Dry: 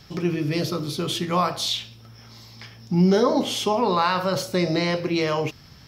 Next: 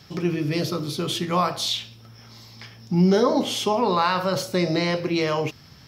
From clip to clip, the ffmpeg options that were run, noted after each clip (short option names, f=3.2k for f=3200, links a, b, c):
-af "highpass=67"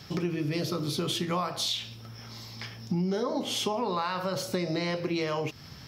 -af "acompressor=threshold=-29dB:ratio=6,volume=2dB"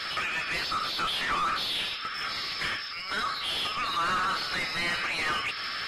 -filter_complex "[0:a]afftfilt=real='re*between(b*sr/4096,1100,5400)':imag='im*between(b*sr/4096,1100,5400)':win_size=4096:overlap=0.75,asplit=2[a][b];[b]highpass=f=720:p=1,volume=34dB,asoftclip=type=tanh:threshold=-18.5dB[c];[a][c]amix=inputs=2:normalize=0,lowpass=f=1.6k:p=1,volume=-6dB" -ar 44100 -c:a aac -b:a 32k